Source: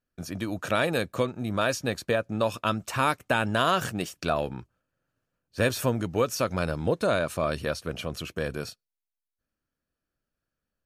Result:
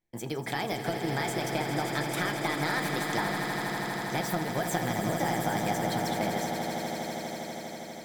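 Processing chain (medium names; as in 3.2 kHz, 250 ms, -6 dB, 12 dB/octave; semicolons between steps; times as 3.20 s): compression, threshold -27 dBFS, peak gain reduction 8.5 dB; echo with a slow build-up 109 ms, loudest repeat 8, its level -10 dB; on a send at -8 dB: reverberation RT60 0.40 s, pre-delay 7 ms; on the sum: speed mistake 33 rpm record played at 45 rpm; trim -2 dB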